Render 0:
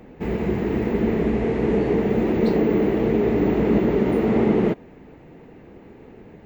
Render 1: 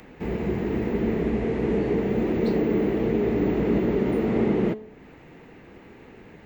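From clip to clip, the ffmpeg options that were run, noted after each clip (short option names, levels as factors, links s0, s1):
-filter_complex "[0:a]bandreject=f=215.7:t=h:w=4,bandreject=f=431.4:t=h:w=4,bandreject=f=647.1:t=h:w=4,bandreject=f=862.8:t=h:w=4,bandreject=f=1078.5:t=h:w=4,bandreject=f=1294.2:t=h:w=4,bandreject=f=1509.9:t=h:w=4,bandreject=f=1725.6:t=h:w=4,bandreject=f=1941.3:t=h:w=4,bandreject=f=2157:t=h:w=4,bandreject=f=2372.7:t=h:w=4,bandreject=f=2588.4:t=h:w=4,bandreject=f=2804.1:t=h:w=4,bandreject=f=3019.8:t=h:w=4,bandreject=f=3235.5:t=h:w=4,bandreject=f=3451.2:t=h:w=4,bandreject=f=3666.9:t=h:w=4,bandreject=f=3882.6:t=h:w=4,bandreject=f=4098.3:t=h:w=4,bandreject=f=4314:t=h:w=4,bandreject=f=4529.7:t=h:w=4,bandreject=f=4745.4:t=h:w=4,bandreject=f=4961.1:t=h:w=4,bandreject=f=5176.8:t=h:w=4,bandreject=f=5392.5:t=h:w=4,bandreject=f=5608.2:t=h:w=4,bandreject=f=5823.9:t=h:w=4,bandreject=f=6039.6:t=h:w=4,bandreject=f=6255.3:t=h:w=4,bandreject=f=6471:t=h:w=4,bandreject=f=6686.7:t=h:w=4,bandreject=f=6902.4:t=h:w=4,bandreject=f=7118.1:t=h:w=4,bandreject=f=7333.8:t=h:w=4,bandreject=f=7549.5:t=h:w=4,bandreject=f=7765.2:t=h:w=4,bandreject=f=7980.9:t=h:w=4,bandreject=f=8196.6:t=h:w=4,bandreject=f=8412.3:t=h:w=4,bandreject=f=8628:t=h:w=4,acrossover=split=710|1000[s0][s1][s2];[s1]alimiter=level_in=5.01:limit=0.0631:level=0:latency=1,volume=0.2[s3];[s2]acompressor=mode=upward:threshold=0.00631:ratio=2.5[s4];[s0][s3][s4]amix=inputs=3:normalize=0,volume=0.708"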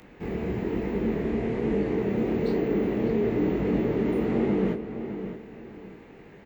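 -filter_complex "[0:a]flanger=delay=20:depth=7.1:speed=1.1,asplit=2[s0][s1];[s1]adelay=608,lowpass=f=3700:p=1,volume=0.335,asplit=2[s2][s3];[s3]adelay=608,lowpass=f=3700:p=1,volume=0.32,asplit=2[s4][s5];[s5]adelay=608,lowpass=f=3700:p=1,volume=0.32,asplit=2[s6][s7];[s7]adelay=608,lowpass=f=3700:p=1,volume=0.32[s8];[s0][s2][s4][s6][s8]amix=inputs=5:normalize=0"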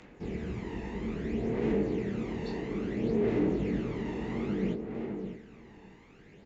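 -af "crystalizer=i=2.5:c=0,aresample=16000,aresample=44100,aphaser=in_gain=1:out_gain=1:delay=1.1:decay=0.49:speed=0.6:type=sinusoidal,volume=0.376"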